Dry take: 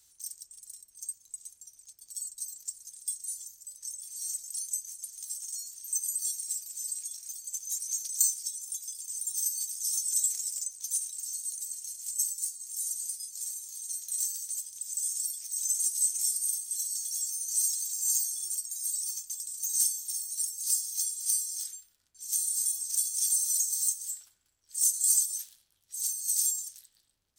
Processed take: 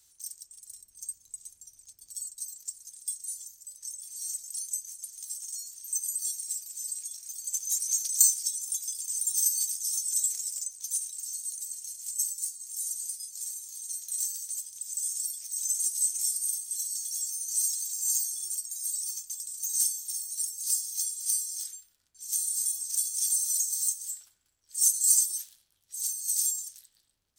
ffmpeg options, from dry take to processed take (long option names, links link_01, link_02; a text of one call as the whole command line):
ffmpeg -i in.wav -filter_complex "[0:a]asettb=1/sr,asplit=3[link_01][link_02][link_03];[link_01]atrim=end=0.704[link_04];[link_02]atrim=start=0.7:end=2.25,asetpts=PTS-STARTPTS,afade=type=in:duration=0.004:curve=qsin,afade=type=out:start_time=1.546:duration=0.004:curve=qsin,lowshelf=frequency=270:gain=8[link_05];[link_03]atrim=start=2.246[link_06];[link_04][link_05]acrossfade=duration=0.004:curve1=hsin:curve2=qsin[link_07];[link_07][link_06]acrossfade=duration=0.004:curve1=qsin:curve2=hsin,asettb=1/sr,asplit=3[link_08][link_09][link_10];[link_08]atrim=end=7.384[link_11];[link_09]atrim=start=7.38:end=9.77,asetpts=PTS-STARTPTS,afade=type=in:duration=0.004:curve=qsin,afade=type=out:start_time=2.386:duration=0.004:curve=qsin,acontrast=22[link_12];[link_10]atrim=start=9.766[link_13];[link_11][link_12]acrossfade=duration=0.004:curve1=hsin:curve2=qsin[link_14];[link_14][link_13]acrossfade=duration=0.004:curve1=qsin:curve2=hsin,asettb=1/sr,asplit=3[link_15][link_16][link_17];[link_15]atrim=end=24.784[link_18];[link_16]atrim=start=24.78:end=25.39,asetpts=PTS-STARTPTS,afade=type=in:duration=0.004:curve=qsin,afade=type=out:start_time=0.606:duration=0.004:curve=qsin,aecho=1:1:6.9:0.76,atrim=end_sample=26901[link_19];[link_17]atrim=start=25.386[link_20];[link_18][link_19]acrossfade=duration=0.004:curve1=hsin:curve2=qsin[link_21];[link_21][link_20]acrossfade=duration=0.004:curve1=qsin:curve2=hsin" out.wav